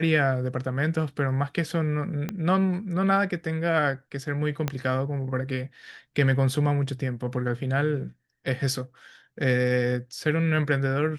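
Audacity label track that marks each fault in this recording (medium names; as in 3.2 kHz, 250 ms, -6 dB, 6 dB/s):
2.290000	2.290000	pop -16 dBFS
4.680000	4.680000	pop -12 dBFS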